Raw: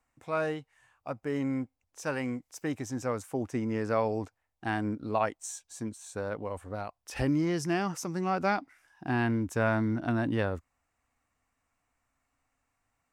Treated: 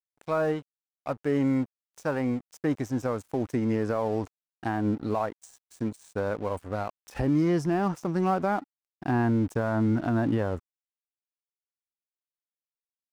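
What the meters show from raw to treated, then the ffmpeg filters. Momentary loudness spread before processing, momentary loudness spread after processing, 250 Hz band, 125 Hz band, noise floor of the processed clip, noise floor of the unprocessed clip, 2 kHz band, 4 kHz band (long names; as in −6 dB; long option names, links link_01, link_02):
11 LU, 10 LU, +4.5 dB, +4.0 dB, below −85 dBFS, −81 dBFS, −1.5 dB, −3.0 dB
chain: -filter_complex "[0:a]acrossover=split=1400[link_01][link_02];[link_02]acompressor=threshold=-50dB:ratio=8[link_03];[link_01][link_03]amix=inputs=2:normalize=0,alimiter=limit=-23.5dB:level=0:latency=1:release=152,aeval=exprs='sgn(val(0))*max(abs(val(0))-0.00251,0)':channel_layout=same,volume=7dB"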